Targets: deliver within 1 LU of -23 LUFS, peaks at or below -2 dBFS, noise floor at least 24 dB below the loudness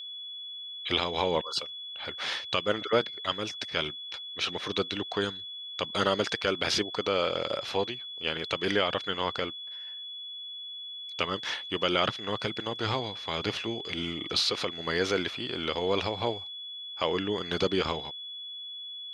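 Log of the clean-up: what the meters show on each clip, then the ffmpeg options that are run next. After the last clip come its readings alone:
steady tone 3400 Hz; tone level -38 dBFS; loudness -30.5 LUFS; peak -11.5 dBFS; loudness target -23.0 LUFS
-> -af "bandreject=f=3.4k:w=30"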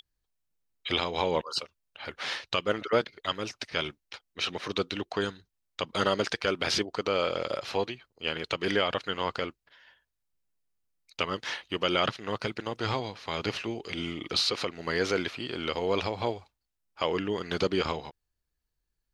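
steady tone none; loudness -30.5 LUFS; peak -12.0 dBFS; loudness target -23.0 LUFS
-> -af "volume=7.5dB"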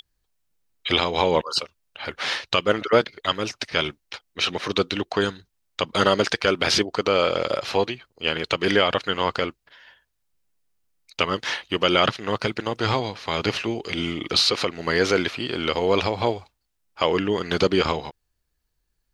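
loudness -23.0 LUFS; peak -4.5 dBFS; noise floor -75 dBFS

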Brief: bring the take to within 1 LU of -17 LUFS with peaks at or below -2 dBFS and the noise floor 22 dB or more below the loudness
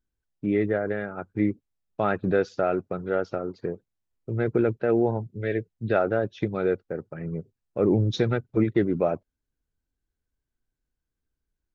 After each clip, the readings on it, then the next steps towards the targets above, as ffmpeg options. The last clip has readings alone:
loudness -26.5 LUFS; peak -10.0 dBFS; loudness target -17.0 LUFS
-> -af "volume=9.5dB,alimiter=limit=-2dB:level=0:latency=1"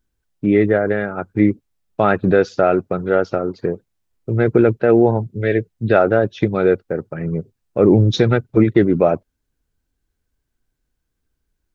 loudness -17.5 LUFS; peak -2.0 dBFS; noise floor -75 dBFS

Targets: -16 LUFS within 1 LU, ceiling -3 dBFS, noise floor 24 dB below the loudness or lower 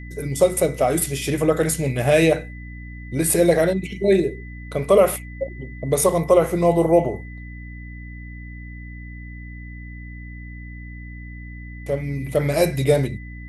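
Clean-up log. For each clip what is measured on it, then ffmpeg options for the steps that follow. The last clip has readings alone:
hum 60 Hz; harmonics up to 300 Hz; hum level -33 dBFS; steady tone 2000 Hz; tone level -42 dBFS; loudness -20.0 LUFS; peak -3.5 dBFS; loudness target -16.0 LUFS
-> -af "bandreject=f=60:t=h:w=4,bandreject=f=120:t=h:w=4,bandreject=f=180:t=h:w=4,bandreject=f=240:t=h:w=4,bandreject=f=300:t=h:w=4"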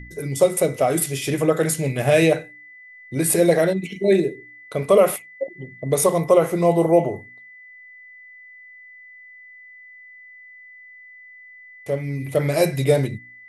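hum none; steady tone 2000 Hz; tone level -42 dBFS
-> -af "bandreject=f=2k:w=30"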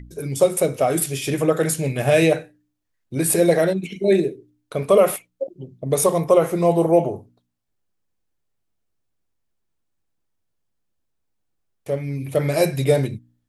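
steady tone none; loudness -20.0 LUFS; peak -3.5 dBFS; loudness target -16.0 LUFS
-> -af "volume=4dB,alimiter=limit=-3dB:level=0:latency=1"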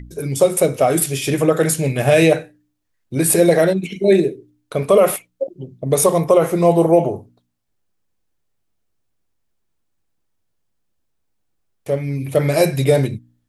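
loudness -16.5 LUFS; peak -3.0 dBFS; noise floor -70 dBFS

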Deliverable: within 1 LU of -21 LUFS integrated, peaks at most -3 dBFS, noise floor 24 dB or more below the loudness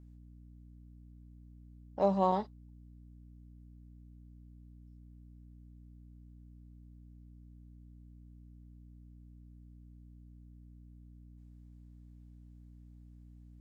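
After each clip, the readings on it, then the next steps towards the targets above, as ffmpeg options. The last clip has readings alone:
hum 60 Hz; harmonics up to 300 Hz; hum level -52 dBFS; loudness -32.0 LUFS; peak -15.5 dBFS; loudness target -21.0 LUFS
-> -af "bandreject=f=60:t=h:w=4,bandreject=f=120:t=h:w=4,bandreject=f=180:t=h:w=4,bandreject=f=240:t=h:w=4,bandreject=f=300:t=h:w=4"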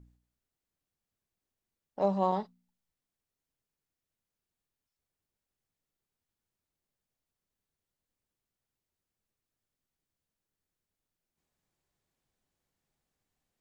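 hum none; loudness -31.0 LUFS; peak -15.5 dBFS; loudness target -21.0 LUFS
-> -af "volume=10dB"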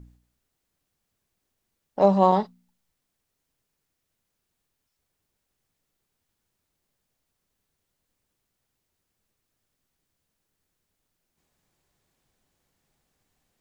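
loudness -21.0 LUFS; peak -5.5 dBFS; noise floor -80 dBFS

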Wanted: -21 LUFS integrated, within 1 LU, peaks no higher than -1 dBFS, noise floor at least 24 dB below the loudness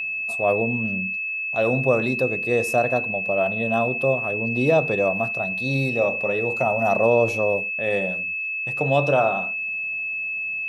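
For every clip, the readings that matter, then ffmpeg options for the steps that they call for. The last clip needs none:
steady tone 2600 Hz; tone level -25 dBFS; loudness -21.5 LUFS; peak -6.5 dBFS; loudness target -21.0 LUFS
-> -af "bandreject=f=2.6k:w=30"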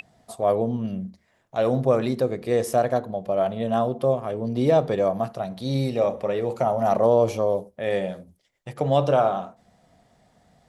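steady tone none; loudness -23.5 LUFS; peak -7.0 dBFS; loudness target -21.0 LUFS
-> -af "volume=2.5dB"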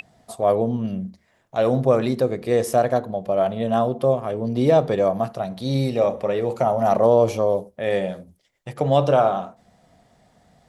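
loudness -21.0 LUFS; peak -4.5 dBFS; noise floor -64 dBFS

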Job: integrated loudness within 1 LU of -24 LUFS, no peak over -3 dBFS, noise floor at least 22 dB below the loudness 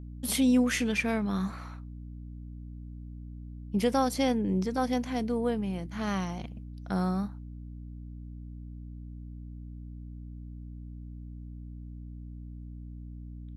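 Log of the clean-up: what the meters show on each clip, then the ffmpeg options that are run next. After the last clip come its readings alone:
hum 60 Hz; harmonics up to 300 Hz; hum level -40 dBFS; loudness -29.0 LUFS; peak -14.5 dBFS; loudness target -24.0 LUFS
-> -af "bandreject=f=60:t=h:w=6,bandreject=f=120:t=h:w=6,bandreject=f=180:t=h:w=6,bandreject=f=240:t=h:w=6,bandreject=f=300:t=h:w=6"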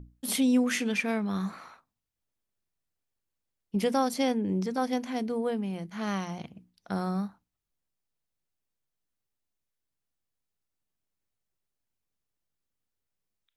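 hum none; loudness -29.5 LUFS; peak -15.0 dBFS; loudness target -24.0 LUFS
-> -af "volume=5.5dB"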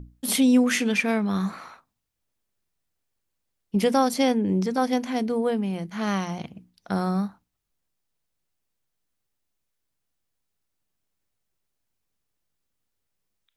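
loudness -24.0 LUFS; peak -9.5 dBFS; noise floor -79 dBFS

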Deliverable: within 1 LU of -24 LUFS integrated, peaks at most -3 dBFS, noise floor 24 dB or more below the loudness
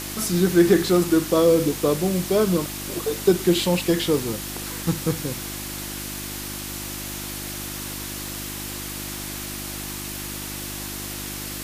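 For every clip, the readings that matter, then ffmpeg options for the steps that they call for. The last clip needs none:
hum 50 Hz; harmonics up to 350 Hz; hum level -34 dBFS; noise floor -33 dBFS; noise floor target -48 dBFS; loudness -24.0 LUFS; peak -5.0 dBFS; loudness target -24.0 LUFS
-> -af "bandreject=f=50:t=h:w=4,bandreject=f=100:t=h:w=4,bandreject=f=150:t=h:w=4,bandreject=f=200:t=h:w=4,bandreject=f=250:t=h:w=4,bandreject=f=300:t=h:w=4,bandreject=f=350:t=h:w=4"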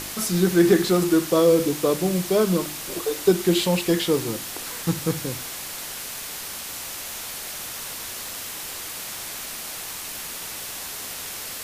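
hum none; noise floor -34 dBFS; noise floor target -49 dBFS
-> -af "afftdn=nr=15:nf=-34"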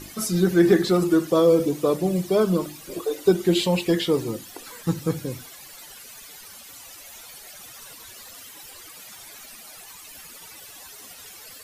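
noise floor -44 dBFS; noise floor target -46 dBFS
-> -af "afftdn=nr=6:nf=-44"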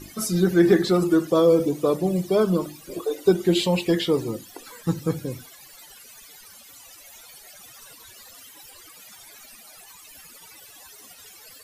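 noise floor -48 dBFS; loudness -22.0 LUFS; peak -5.0 dBFS; loudness target -24.0 LUFS
-> -af "volume=-2dB"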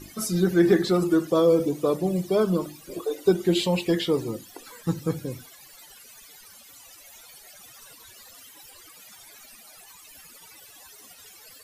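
loudness -24.0 LUFS; peak -7.0 dBFS; noise floor -50 dBFS

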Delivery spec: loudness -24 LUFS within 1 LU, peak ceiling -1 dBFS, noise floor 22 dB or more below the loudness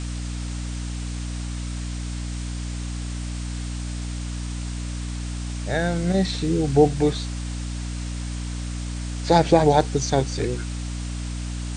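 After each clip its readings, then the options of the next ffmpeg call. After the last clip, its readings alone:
hum 60 Hz; harmonics up to 300 Hz; hum level -27 dBFS; noise floor -30 dBFS; noise floor target -48 dBFS; loudness -25.5 LUFS; peak -2.0 dBFS; loudness target -24.0 LUFS
-> -af "bandreject=f=60:t=h:w=4,bandreject=f=120:t=h:w=4,bandreject=f=180:t=h:w=4,bandreject=f=240:t=h:w=4,bandreject=f=300:t=h:w=4"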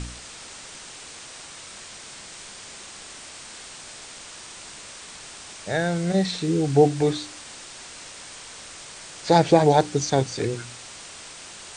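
hum none; noise floor -42 dBFS; noise floor target -44 dBFS
-> -af "afftdn=nr=6:nf=-42"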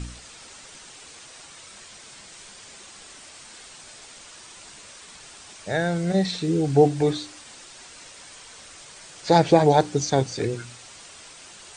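noise floor -46 dBFS; loudness -21.5 LUFS; peak -3.0 dBFS; loudness target -24.0 LUFS
-> -af "volume=-2.5dB"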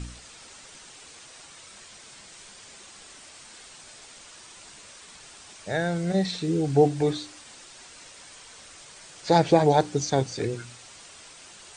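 loudness -24.0 LUFS; peak -5.5 dBFS; noise floor -48 dBFS

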